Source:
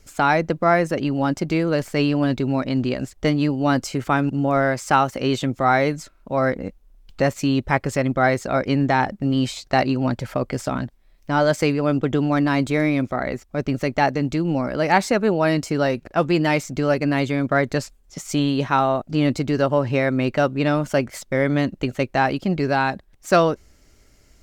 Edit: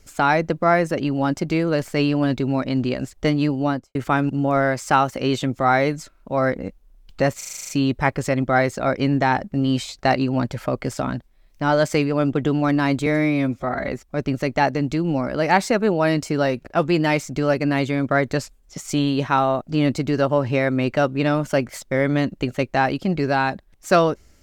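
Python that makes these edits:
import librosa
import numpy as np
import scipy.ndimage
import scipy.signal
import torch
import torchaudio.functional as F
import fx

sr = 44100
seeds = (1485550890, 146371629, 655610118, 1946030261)

y = fx.studio_fade_out(x, sr, start_s=3.57, length_s=0.38)
y = fx.edit(y, sr, fx.stutter(start_s=7.37, slice_s=0.04, count=9),
    fx.stretch_span(start_s=12.74, length_s=0.55, factor=1.5), tone=tone)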